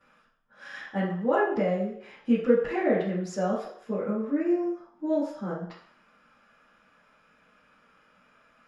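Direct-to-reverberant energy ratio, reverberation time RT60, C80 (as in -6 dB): -13.5 dB, 0.60 s, 7.0 dB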